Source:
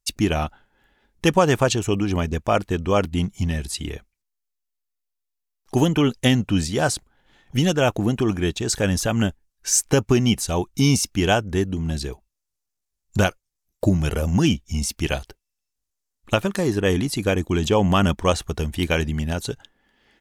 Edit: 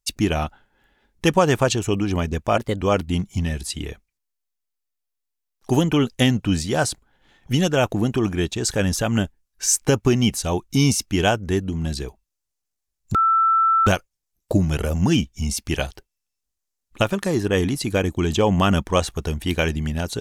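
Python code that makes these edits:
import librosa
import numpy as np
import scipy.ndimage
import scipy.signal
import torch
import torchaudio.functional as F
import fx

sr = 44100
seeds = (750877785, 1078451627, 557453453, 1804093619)

y = fx.edit(x, sr, fx.speed_span(start_s=2.57, length_s=0.28, speed=1.18),
    fx.insert_tone(at_s=13.19, length_s=0.72, hz=1330.0, db=-14.0), tone=tone)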